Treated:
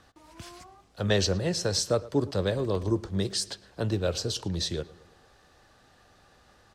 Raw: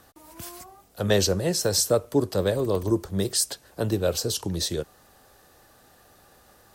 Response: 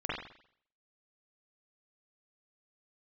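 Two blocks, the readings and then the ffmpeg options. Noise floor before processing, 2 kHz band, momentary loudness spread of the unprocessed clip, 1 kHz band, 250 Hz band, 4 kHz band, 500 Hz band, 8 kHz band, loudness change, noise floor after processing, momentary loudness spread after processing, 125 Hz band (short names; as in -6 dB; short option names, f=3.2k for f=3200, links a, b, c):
-57 dBFS, -1.5 dB, 18 LU, -3.0 dB, -3.0 dB, -2.5 dB, -4.5 dB, -7.5 dB, -3.5 dB, -60 dBFS, 15 LU, -1.0 dB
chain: -filter_complex "[0:a]lowpass=5.1k,equalizer=f=490:w=0.45:g=-4.5,asplit=2[a][b];[b]adelay=112,lowpass=f=3.2k:p=1,volume=-19.5dB,asplit=2[c][d];[d]adelay=112,lowpass=f=3.2k:p=1,volume=0.54,asplit=2[e][f];[f]adelay=112,lowpass=f=3.2k:p=1,volume=0.54,asplit=2[g][h];[h]adelay=112,lowpass=f=3.2k:p=1,volume=0.54[i];[a][c][e][g][i]amix=inputs=5:normalize=0"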